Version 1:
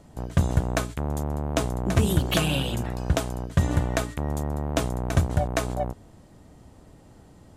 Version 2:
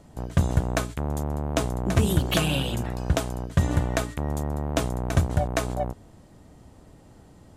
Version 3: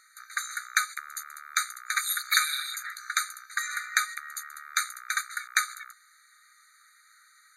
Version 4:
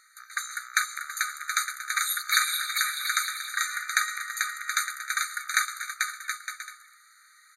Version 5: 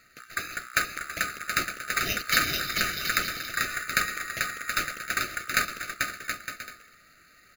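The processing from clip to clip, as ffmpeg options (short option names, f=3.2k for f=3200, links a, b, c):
-af anull
-af "afftfilt=real='re*eq(mod(floor(b*sr/1024/1200),2),1)':imag='im*eq(mod(floor(b*sr/1024/1200),2),1)':win_size=1024:overlap=0.75,volume=8.5dB"
-af "aecho=1:1:440|726|911.9|1033|1111:0.631|0.398|0.251|0.158|0.1"
-af "acrusher=samples=5:mix=1:aa=0.000001"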